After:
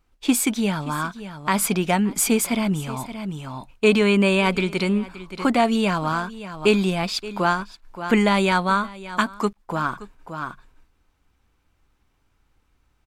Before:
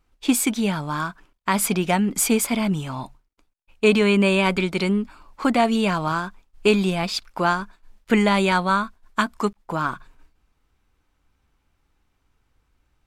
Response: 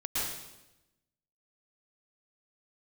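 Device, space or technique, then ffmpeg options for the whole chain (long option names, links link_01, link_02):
ducked delay: -filter_complex "[0:a]asplit=3[link_01][link_02][link_03];[link_02]adelay=574,volume=-3dB[link_04];[link_03]apad=whole_len=601338[link_05];[link_04][link_05]sidechaincompress=threshold=-36dB:ratio=12:attack=16:release=541[link_06];[link_01][link_06]amix=inputs=2:normalize=0"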